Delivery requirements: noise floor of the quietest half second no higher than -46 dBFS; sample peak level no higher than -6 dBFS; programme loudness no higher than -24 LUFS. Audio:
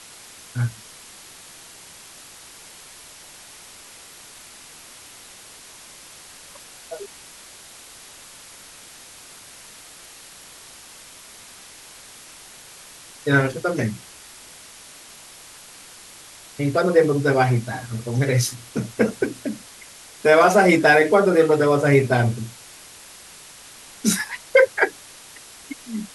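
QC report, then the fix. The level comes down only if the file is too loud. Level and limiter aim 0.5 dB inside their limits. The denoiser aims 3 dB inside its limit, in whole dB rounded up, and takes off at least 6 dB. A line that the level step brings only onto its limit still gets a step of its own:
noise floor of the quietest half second -44 dBFS: fail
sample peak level -4.0 dBFS: fail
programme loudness -19.5 LUFS: fail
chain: gain -5 dB

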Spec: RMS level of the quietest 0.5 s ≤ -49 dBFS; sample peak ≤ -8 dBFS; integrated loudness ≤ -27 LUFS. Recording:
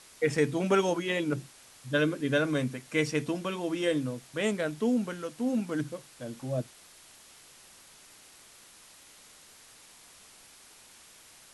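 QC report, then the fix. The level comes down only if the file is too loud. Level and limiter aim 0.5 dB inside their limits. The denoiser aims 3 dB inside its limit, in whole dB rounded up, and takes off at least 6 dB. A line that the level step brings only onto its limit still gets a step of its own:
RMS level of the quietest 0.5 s -55 dBFS: OK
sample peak -13.0 dBFS: OK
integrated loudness -30.0 LUFS: OK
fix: none

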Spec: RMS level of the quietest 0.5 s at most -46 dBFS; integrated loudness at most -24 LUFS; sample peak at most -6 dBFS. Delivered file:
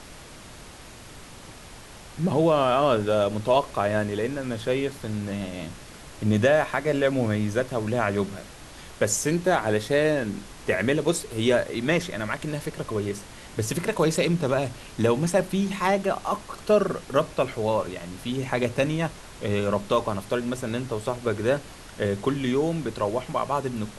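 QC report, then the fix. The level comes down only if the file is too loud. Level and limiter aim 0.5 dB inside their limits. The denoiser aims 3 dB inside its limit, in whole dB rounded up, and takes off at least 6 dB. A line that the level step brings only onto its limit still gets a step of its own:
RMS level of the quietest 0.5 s -44 dBFS: fail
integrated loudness -25.5 LUFS: OK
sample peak -7.5 dBFS: OK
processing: denoiser 6 dB, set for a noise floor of -44 dBFS

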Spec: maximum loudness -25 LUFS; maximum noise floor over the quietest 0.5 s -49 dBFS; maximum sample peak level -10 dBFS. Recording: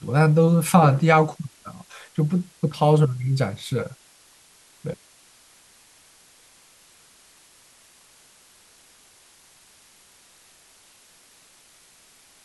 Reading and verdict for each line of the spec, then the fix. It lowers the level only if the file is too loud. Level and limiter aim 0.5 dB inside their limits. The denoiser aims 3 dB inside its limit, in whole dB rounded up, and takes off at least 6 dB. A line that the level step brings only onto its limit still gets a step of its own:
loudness -20.0 LUFS: fail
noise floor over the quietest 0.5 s -55 dBFS: OK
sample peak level -4.5 dBFS: fail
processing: gain -5.5 dB; limiter -10.5 dBFS

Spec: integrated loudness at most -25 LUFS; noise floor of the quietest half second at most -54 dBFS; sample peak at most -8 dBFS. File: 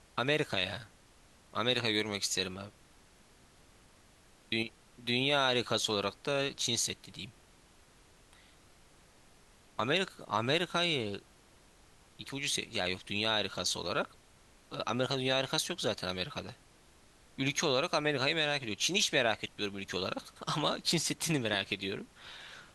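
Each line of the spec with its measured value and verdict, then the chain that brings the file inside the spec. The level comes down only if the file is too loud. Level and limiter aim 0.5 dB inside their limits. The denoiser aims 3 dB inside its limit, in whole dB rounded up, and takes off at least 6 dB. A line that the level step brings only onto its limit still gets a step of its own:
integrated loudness -32.0 LUFS: OK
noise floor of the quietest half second -62 dBFS: OK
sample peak -14.5 dBFS: OK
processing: none

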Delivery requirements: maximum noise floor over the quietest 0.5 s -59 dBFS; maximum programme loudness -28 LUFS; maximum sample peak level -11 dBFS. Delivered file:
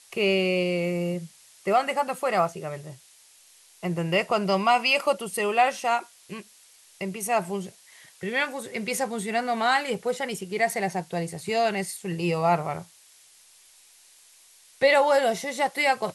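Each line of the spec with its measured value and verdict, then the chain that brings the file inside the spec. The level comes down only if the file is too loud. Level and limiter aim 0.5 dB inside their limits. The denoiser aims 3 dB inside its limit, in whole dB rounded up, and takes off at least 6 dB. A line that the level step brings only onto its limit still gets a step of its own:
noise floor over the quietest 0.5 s -55 dBFS: fail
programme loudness -25.5 LUFS: fail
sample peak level -9.0 dBFS: fail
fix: denoiser 6 dB, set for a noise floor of -55 dBFS; gain -3 dB

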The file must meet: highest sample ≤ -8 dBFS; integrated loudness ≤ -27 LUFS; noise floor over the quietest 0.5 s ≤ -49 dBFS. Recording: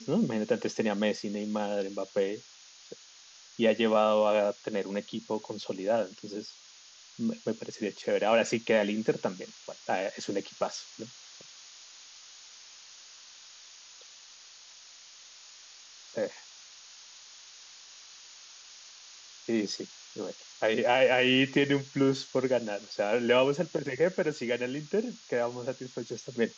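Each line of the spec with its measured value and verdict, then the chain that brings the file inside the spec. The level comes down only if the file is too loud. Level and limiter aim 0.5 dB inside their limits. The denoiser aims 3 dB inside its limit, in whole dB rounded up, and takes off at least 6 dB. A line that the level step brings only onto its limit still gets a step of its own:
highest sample -12.0 dBFS: OK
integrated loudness -29.5 LUFS: OK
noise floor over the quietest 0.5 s -54 dBFS: OK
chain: none

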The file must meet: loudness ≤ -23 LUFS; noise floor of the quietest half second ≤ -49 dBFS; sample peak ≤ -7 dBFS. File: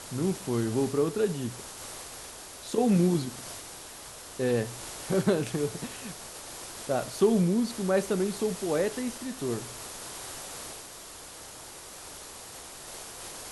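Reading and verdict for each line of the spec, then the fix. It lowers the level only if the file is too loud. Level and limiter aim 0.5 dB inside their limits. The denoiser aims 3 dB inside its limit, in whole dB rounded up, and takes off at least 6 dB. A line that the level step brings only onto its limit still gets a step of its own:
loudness -30.0 LUFS: OK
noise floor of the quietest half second -45 dBFS: fail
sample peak -12.5 dBFS: OK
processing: denoiser 7 dB, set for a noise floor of -45 dBFS

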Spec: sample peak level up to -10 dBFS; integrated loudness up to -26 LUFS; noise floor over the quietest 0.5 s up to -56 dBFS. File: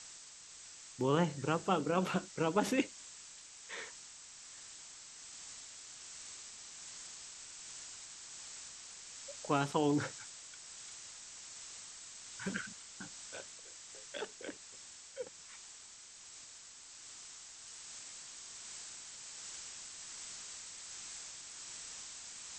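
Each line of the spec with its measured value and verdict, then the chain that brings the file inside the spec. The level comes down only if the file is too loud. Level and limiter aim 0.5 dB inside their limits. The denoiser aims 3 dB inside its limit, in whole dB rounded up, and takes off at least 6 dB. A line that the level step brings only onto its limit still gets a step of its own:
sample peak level -15.5 dBFS: OK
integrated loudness -41.5 LUFS: OK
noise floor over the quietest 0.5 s -55 dBFS: fail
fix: denoiser 6 dB, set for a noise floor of -55 dBFS

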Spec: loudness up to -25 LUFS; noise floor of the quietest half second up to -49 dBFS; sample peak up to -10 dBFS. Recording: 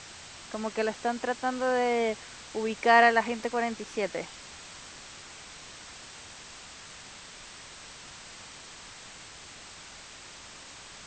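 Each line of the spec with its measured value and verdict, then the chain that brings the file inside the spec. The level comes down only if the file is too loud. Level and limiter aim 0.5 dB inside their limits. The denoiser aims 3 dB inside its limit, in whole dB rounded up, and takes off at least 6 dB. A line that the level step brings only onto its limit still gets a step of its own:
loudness -27.5 LUFS: OK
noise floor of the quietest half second -47 dBFS: fail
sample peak -7.0 dBFS: fail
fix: denoiser 6 dB, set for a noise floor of -47 dBFS; limiter -10.5 dBFS

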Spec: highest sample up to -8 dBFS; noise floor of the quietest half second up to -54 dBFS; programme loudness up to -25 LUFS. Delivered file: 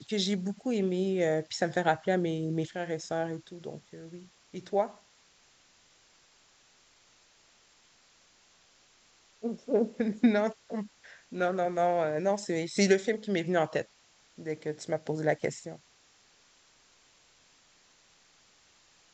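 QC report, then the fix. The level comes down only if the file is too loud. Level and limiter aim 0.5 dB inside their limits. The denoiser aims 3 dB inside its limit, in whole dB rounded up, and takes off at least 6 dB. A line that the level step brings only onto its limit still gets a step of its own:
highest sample -9.5 dBFS: OK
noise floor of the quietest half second -63 dBFS: OK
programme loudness -30.5 LUFS: OK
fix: none

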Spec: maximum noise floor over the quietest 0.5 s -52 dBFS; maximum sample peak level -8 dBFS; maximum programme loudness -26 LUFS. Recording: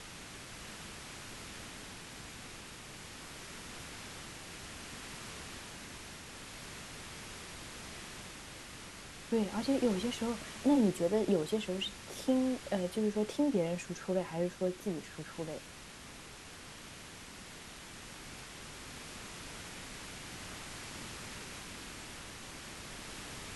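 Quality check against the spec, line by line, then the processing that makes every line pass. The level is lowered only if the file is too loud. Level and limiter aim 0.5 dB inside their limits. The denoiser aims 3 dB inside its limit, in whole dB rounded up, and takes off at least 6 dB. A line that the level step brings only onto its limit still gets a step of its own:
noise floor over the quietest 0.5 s -50 dBFS: fail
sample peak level -18.0 dBFS: OK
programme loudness -38.5 LUFS: OK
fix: denoiser 6 dB, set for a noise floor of -50 dBFS

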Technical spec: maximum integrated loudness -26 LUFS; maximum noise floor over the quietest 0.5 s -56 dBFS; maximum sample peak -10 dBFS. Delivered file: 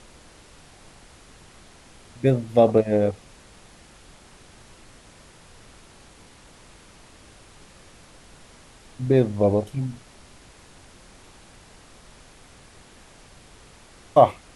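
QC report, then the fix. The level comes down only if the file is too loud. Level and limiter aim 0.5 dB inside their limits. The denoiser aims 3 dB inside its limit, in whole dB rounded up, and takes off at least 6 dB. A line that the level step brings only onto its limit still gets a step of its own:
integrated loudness -21.5 LUFS: fail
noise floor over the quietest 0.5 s -50 dBFS: fail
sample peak -2.5 dBFS: fail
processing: denoiser 6 dB, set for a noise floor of -50 dBFS; gain -5 dB; limiter -10.5 dBFS

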